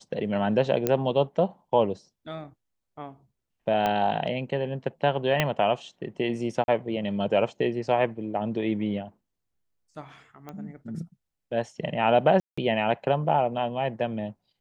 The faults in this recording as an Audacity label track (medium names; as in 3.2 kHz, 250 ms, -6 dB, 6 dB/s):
0.870000	0.870000	pop -10 dBFS
3.860000	3.860000	pop -13 dBFS
5.400000	5.400000	pop -8 dBFS
6.640000	6.680000	dropout 41 ms
10.490000	10.490000	pop -25 dBFS
12.400000	12.570000	dropout 175 ms